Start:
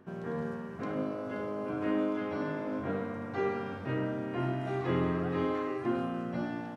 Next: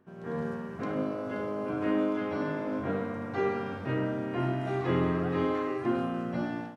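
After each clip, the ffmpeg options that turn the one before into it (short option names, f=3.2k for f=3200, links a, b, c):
-af "dynaudnorm=f=170:g=3:m=10dB,volume=-7.5dB"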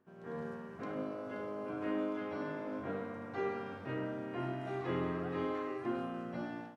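-af "bass=f=250:g=-4,treble=f=4k:g=-1,volume=-7dB"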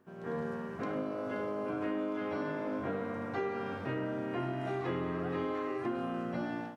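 -af "acompressor=threshold=-39dB:ratio=4,volume=7dB"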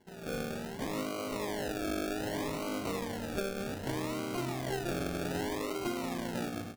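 -af "acrusher=samples=35:mix=1:aa=0.000001:lfo=1:lforange=21:lforate=0.64"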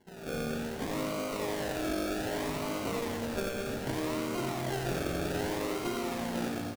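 -af "aecho=1:1:90|207|359.1|556.8|813.9:0.631|0.398|0.251|0.158|0.1"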